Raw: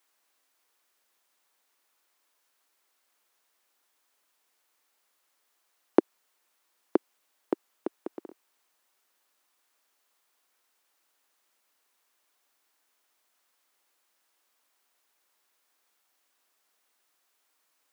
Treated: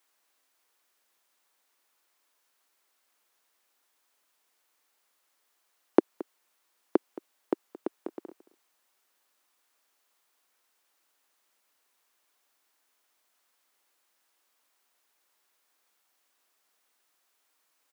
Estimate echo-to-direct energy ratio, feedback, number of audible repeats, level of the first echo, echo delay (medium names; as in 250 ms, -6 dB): -18.5 dB, no regular repeats, 1, -18.5 dB, 222 ms